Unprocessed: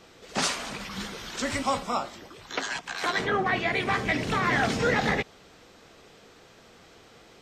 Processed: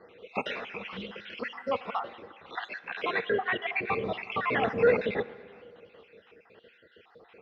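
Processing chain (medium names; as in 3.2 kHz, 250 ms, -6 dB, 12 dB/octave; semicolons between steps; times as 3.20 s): random holes in the spectrogram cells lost 53%; cabinet simulation 100–3100 Hz, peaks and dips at 140 Hz -8 dB, 280 Hz -4 dB, 470 Hz +9 dB, 2.7 kHz +7 dB; plate-style reverb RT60 2.4 s, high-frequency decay 0.75×, DRR 16.5 dB; trim -2 dB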